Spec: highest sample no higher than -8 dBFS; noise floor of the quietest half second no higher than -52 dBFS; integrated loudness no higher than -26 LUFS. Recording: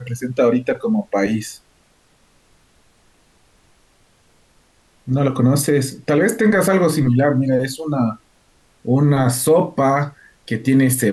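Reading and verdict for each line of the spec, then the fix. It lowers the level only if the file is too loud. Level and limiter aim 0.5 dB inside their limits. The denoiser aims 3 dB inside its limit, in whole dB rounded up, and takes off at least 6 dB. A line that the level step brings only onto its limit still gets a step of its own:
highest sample -6.0 dBFS: fail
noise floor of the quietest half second -57 dBFS: pass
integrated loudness -17.5 LUFS: fail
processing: trim -9 dB

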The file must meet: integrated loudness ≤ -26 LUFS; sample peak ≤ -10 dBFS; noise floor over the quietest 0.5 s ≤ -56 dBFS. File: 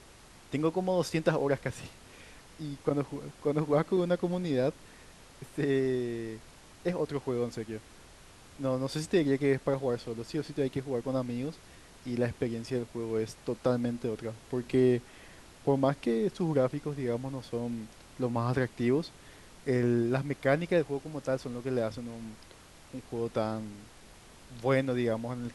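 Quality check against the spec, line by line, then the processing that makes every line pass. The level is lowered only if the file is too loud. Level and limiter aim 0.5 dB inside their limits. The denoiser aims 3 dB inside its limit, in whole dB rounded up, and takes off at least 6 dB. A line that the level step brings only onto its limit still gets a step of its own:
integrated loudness -31.5 LUFS: pass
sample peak -11.5 dBFS: pass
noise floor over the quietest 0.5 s -54 dBFS: fail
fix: noise reduction 6 dB, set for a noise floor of -54 dBFS

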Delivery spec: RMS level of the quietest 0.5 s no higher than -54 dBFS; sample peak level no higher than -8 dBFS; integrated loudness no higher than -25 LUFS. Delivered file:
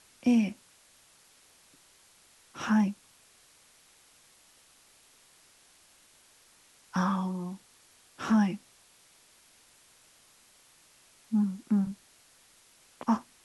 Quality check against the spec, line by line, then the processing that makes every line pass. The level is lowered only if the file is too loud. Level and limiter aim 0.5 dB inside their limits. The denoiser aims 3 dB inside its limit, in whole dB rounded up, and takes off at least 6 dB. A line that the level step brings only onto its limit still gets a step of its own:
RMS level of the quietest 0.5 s -61 dBFS: pass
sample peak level -15.0 dBFS: pass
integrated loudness -30.0 LUFS: pass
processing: none needed

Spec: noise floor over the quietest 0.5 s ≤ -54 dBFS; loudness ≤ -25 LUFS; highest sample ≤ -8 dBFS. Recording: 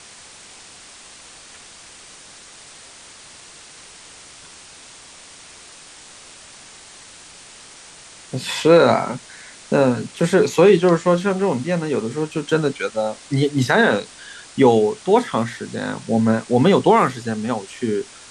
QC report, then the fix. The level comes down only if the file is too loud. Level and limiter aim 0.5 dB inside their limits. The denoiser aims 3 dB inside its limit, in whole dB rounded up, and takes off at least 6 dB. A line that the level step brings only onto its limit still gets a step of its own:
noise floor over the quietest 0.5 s -43 dBFS: fail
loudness -18.5 LUFS: fail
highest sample -3.0 dBFS: fail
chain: noise reduction 7 dB, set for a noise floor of -43 dBFS; trim -7 dB

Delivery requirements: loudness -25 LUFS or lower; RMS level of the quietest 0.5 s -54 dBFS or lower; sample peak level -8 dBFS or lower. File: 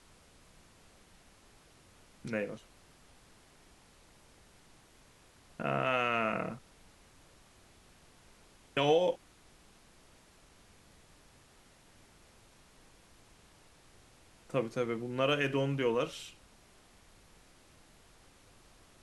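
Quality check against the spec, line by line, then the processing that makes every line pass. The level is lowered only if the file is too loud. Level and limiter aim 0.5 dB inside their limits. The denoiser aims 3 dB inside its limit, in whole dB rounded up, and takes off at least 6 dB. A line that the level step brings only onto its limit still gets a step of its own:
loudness -32.5 LUFS: pass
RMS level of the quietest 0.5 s -61 dBFS: pass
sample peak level -16.5 dBFS: pass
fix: none needed

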